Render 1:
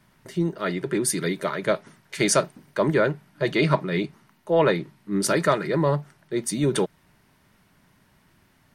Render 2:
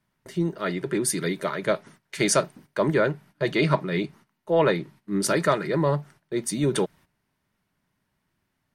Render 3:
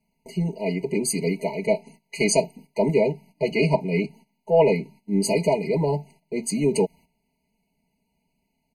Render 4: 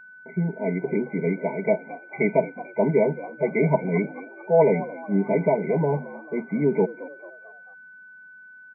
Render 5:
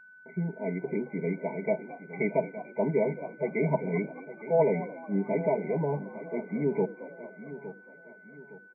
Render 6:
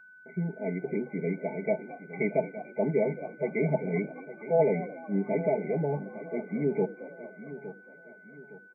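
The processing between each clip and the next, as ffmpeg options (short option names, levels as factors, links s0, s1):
-af "agate=range=0.2:threshold=0.00447:ratio=16:detection=peak,volume=0.891"
-af "aecho=1:1:4.5:0.95,afftfilt=real='re*eq(mod(floor(b*sr/1024/1000),2),0)':imag='im*eq(mod(floor(b*sr/1024/1000),2),0)':win_size=1024:overlap=0.75"
-filter_complex "[0:a]asplit=5[s0][s1][s2][s3][s4];[s1]adelay=221,afreqshift=79,volume=0.141[s5];[s2]adelay=442,afreqshift=158,volume=0.0661[s6];[s3]adelay=663,afreqshift=237,volume=0.0313[s7];[s4]adelay=884,afreqshift=316,volume=0.0146[s8];[s0][s5][s6][s7][s8]amix=inputs=5:normalize=0,afftfilt=real='re*between(b*sr/4096,130,2400)':imag='im*between(b*sr/4096,130,2400)':win_size=4096:overlap=0.75,aeval=exprs='val(0)+0.00631*sin(2*PI*1500*n/s)':c=same"
-af "aecho=1:1:863|1726|2589|3452:0.2|0.0798|0.0319|0.0128,volume=0.473"
-af "asuperstop=centerf=970:order=12:qfactor=5.7"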